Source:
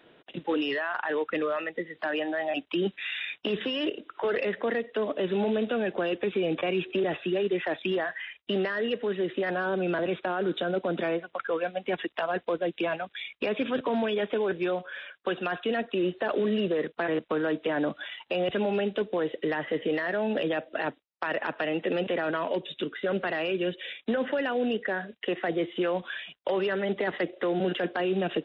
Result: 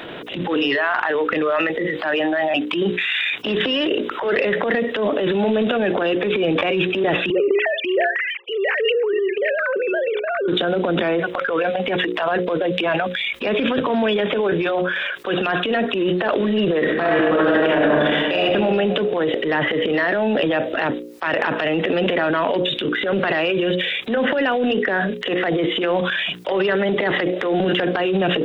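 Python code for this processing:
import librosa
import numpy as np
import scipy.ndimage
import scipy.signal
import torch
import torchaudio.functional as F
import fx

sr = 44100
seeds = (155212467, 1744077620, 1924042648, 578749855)

y = fx.sine_speech(x, sr, at=(7.3, 10.48))
y = fx.reverb_throw(y, sr, start_s=16.81, length_s=1.61, rt60_s=1.5, drr_db=-4.5)
y = fx.hum_notches(y, sr, base_hz=60, count=9)
y = fx.transient(y, sr, attack_db=-11, sustain_db=8)
y = fx.env_flatten(y, sr, amount_pct=50)
y = F.gain(torch.from_numpy(y), 6.0).numpy()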